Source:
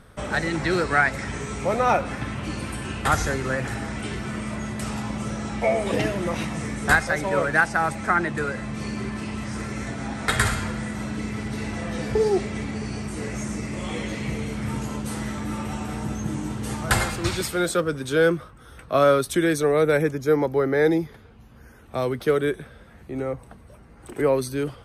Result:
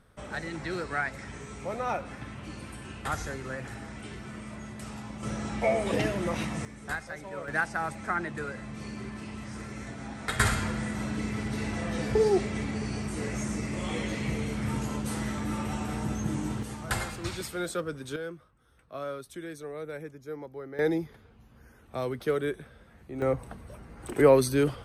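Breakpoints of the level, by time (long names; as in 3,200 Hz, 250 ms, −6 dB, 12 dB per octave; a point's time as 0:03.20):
−11 dB
from 0:05.23 −4 dB
from 0:06.65 −16 dB
from 0:07.48 −9 dB
from 0:10.40 −2.5 dB
from 0:16.63 −9.5 dB
from 0:18.16 −19 dB
from 0:20.79 −7 dB
from 0:23.22 +2 dB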